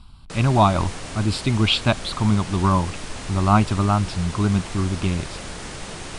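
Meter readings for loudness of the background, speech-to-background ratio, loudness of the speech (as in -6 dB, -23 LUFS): -34.0 LUFS, 12.5 dB, -21.5 LUFS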